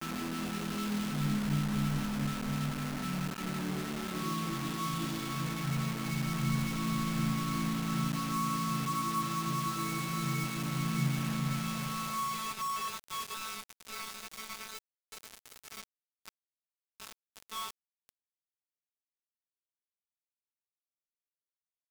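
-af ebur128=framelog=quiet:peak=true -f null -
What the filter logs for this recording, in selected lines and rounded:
Integrated loudness:
  I:         -34.3 LUFS
  Threshold: -44.9 LUFS
Loudness range:
  LRA:        16.0 LU
  Threshold: -55.4 LUFS
  LRA low:   -48.7 LUFS
  LRA high:  -32.7 LUFS
True peak:
  Peak:      -19.8 dBFS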